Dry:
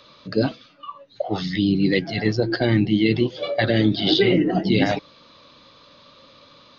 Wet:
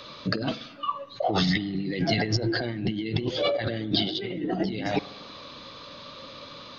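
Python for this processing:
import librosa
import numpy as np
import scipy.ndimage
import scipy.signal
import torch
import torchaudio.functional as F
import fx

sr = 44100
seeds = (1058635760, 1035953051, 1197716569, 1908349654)

y = fx.over_compress(x, sr, threshold_db=-28.0, ratio=-1.0)
y = fx.rev_spring(y, sr, rt60_s=1.3, pass_ms=(46,), chirp_ms=70, drr_db=18.0)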